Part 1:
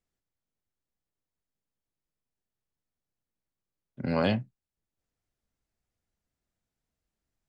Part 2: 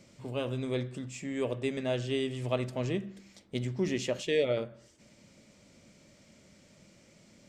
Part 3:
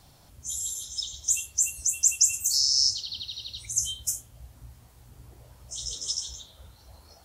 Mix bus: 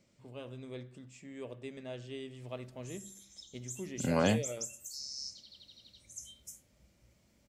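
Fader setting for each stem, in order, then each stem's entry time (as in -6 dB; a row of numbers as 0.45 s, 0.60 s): -2.0 dB, -12.0 dB, -20.0 dB; 0.00 s, 0.00 s, 2.40 s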